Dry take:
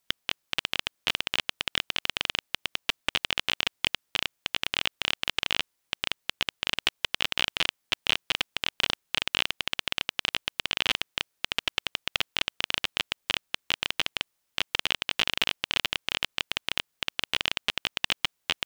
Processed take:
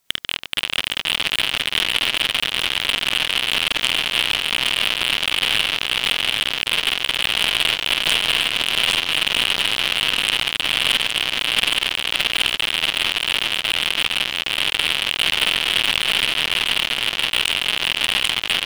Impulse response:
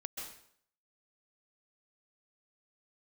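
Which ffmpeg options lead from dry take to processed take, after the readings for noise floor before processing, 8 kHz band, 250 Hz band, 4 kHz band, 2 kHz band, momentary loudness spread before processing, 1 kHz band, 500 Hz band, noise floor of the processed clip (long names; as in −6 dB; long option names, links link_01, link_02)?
−77 dBFS, +12.0 dB, +8.5 dB, +11.0 dB, +10.5 dB, 4 LU, +8.5 dB, +8.5 dB, −32 dBFS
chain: -filter_complex "[0:a]asplit=2[link_01][link_02];[link_02]aecho=0:1:48|75|143|467|681|765:0.668|0.1|0.237|0.422|0.631|0.141[link_03];[link_01][link_03]amix=inputs=2:normalize=0,aeval=exprs='0.794*sin(PI/2*2.51*val(0)/0.794)':channel_layout=same,asplit=2[link_04][link_05];[link_05]aecho=0:1:816:0.668[link_06];[link_04][link_06]amix=inputs=2:normalize=0,volume=-3.5dB"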